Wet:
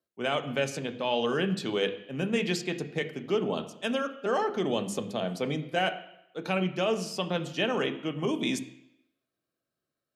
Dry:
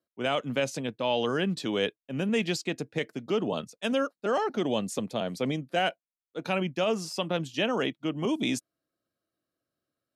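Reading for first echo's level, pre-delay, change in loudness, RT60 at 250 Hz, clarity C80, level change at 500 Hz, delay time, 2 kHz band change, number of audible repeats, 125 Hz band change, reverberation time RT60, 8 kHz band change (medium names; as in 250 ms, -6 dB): no echo, 3 ms, -0.5 dB, 0.80 s, 15.0 dB, 0.0 dB, no echo, +0.5 dB, no echo, 0.0 dB, 0.80 s, -1.0 dB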